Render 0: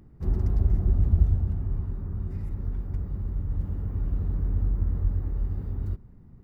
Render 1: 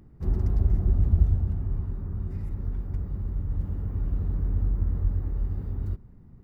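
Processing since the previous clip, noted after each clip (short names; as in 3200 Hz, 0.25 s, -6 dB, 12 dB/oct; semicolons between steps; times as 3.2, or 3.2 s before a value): nothing audible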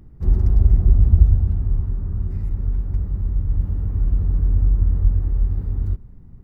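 low shelf 84 Hz +9.5 dB; gain +2 dB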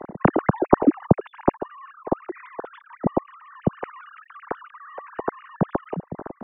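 sine-wave speech; gain -9 dB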